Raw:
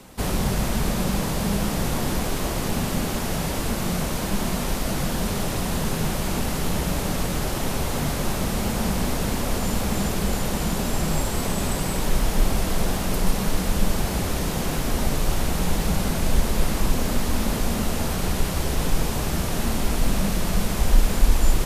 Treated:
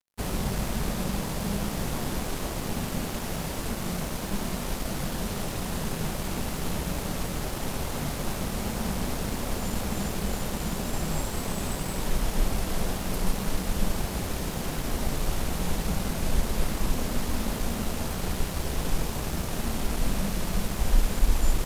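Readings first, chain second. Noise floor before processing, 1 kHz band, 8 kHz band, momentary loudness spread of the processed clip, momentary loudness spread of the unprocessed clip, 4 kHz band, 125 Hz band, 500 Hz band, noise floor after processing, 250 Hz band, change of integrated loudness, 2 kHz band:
−27 dBFS, −5.5 dB, −5.5 dB, 2 LU, 2 LU, −5.5 dB, −5.5 dB, −5.5 dB, −33 dBFS, −6.0 dB, −5.5 dB, −5.5 dB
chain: dead-zone distortion −37.5 dBFS
level −4.5 dB

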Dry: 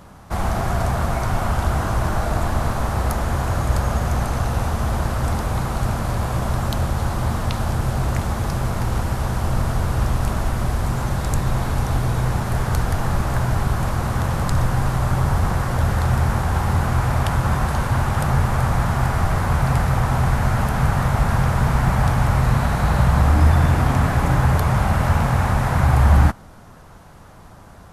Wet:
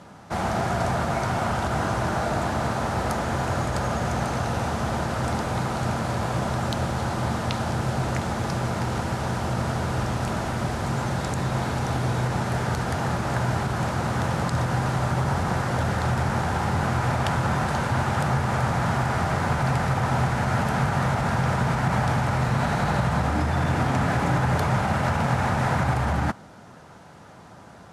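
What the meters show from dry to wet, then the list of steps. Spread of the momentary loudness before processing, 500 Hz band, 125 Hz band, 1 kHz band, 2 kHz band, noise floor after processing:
6 LU, −0.5 dB, −6.0 dB, −1.5 dB, −1.0 dB, −46 dBFS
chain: brickwall limiter −10 dBFS, peak gain reduction 6.5 dB
band-pass filter 130–8,000 Hz
notch filter 1,100 Hz, Q 13

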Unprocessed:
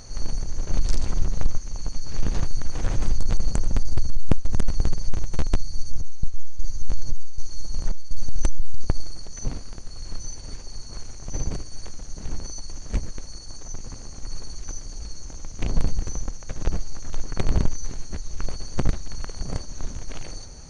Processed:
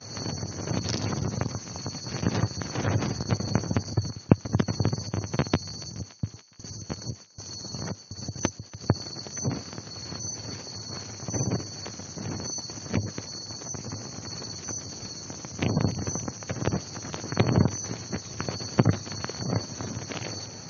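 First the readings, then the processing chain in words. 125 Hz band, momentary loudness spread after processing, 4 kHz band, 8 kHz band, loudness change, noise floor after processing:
+2.0 dB, 11 LU, +5.5 dB, can't be measured, +2.0 dB, −47 dBFS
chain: Chebyshev band-pass filter 100–5,900 Hz, order 4
gate on every frequency bin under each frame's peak −30 dB strong
noise gate −50 dBFS, range −26 dB
on a send: feedback echo with a high-pass in the loop 285 ms, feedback 77%, high-pass 790 Hz, level −18 dB
on the sum: level +7 dB

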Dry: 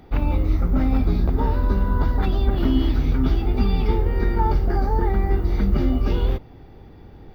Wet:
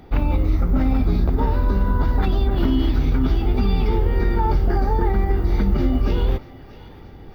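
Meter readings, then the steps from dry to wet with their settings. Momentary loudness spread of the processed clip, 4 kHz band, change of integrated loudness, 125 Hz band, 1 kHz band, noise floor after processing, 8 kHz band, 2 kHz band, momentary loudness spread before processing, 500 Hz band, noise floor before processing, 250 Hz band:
1 LU, +1.5 dB, +1.0 dB, +1.0 dB, +1.0 dB, −41 dBFS, can't be measured, +1.5 dB, 2 LU, +1.5 dB, −45 dBFS, +1.0 dB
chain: brickwall limiter −12.5 dBFS, peak gain reduction 5 dB
on a send: feedback echo with a high-pass in the loop 632 ms, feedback 67%, high-pass 840 Hz, level −16 dB
on the sum: level +2.5 dB

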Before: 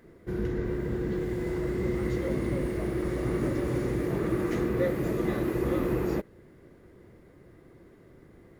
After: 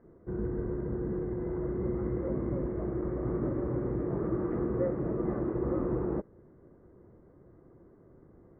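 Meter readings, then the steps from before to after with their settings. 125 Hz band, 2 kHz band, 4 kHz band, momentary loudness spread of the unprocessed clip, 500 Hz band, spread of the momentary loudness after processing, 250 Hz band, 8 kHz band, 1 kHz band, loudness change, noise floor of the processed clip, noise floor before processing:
−3.0 dB, −13.5 dB, below −30 dB, 4 LU, −3.0 dB, 4 LU, −3.0 dB, below −30 dB, −4.0 dB, −3.0 dB, −58 dBFS, −55 dBFS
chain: low-pass filter 1,300 Hz 24 dB per octave
level −3 dB

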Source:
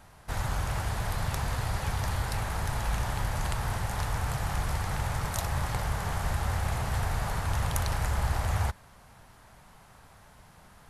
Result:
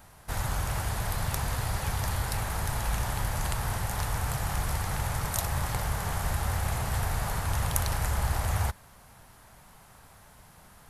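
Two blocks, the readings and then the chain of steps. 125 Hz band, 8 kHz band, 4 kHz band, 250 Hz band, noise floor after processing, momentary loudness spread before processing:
0.0 dB, +4.5 dB, +1.0 dB, 0.0 dB, −54 dBFS, 2 LU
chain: high-shelf EQ 10,000 Hz +11.5 dB

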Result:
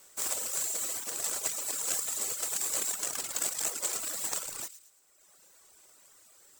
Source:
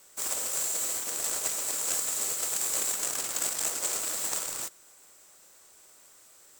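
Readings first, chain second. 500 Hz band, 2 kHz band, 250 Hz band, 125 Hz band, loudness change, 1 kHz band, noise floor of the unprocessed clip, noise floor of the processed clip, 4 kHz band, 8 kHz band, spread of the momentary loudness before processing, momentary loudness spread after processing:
−3.0 dB, −3.0 dB, −3.0 dB, can't be measured, −2.5 dB, −3.0 dB, −57 dBFS, −62 dBFS, −2.5 dB, −2.5 dB, 3 LU, 3 LU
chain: reverb reduction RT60 1.4 s
on a send: delay with a high-pass on its return 111 ms, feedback 38%, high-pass 2,800 Hz, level −12.5 dB

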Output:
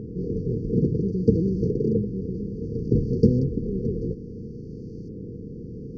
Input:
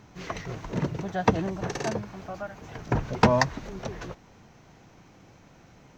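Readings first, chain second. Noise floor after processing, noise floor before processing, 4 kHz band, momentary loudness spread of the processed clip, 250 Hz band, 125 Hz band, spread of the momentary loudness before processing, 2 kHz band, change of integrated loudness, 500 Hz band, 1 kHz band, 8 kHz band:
−38 dBFS, −55 dBFS, below −15 dB, 17 LU, +7.5 dB, +7.0 dB, 17 LU, below −40 dB, +4.0 dB, +3.5 dB, below −40 dB, below −15 dB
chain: compressor on every frequency bin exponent 0.6
auto-filter low-pass saw up 0.59 Hz 850–1,900 Hz
linear-phase brick-wall band-stop 500–4,300 Hz
level +3 dB

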